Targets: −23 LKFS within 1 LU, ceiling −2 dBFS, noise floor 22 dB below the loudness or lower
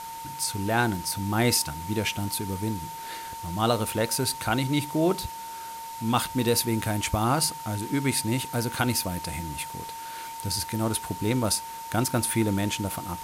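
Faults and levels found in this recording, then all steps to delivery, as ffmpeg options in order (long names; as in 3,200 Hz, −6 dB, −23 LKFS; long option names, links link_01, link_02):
interfering tone 910 Hz; level of the tone −36 dBFS; background noise floor −38 dBFS; target noise floor −49 dBFS; integrated loudness −27.0 LKFS; sample peak −9.0 dBFS; target loudness −23.0 LKFS
→ -af "bandreject=frequency=910:width=30"
-af "afftdn=noise_reduction=11:noise_floor=-38"
-af "volume=4dB"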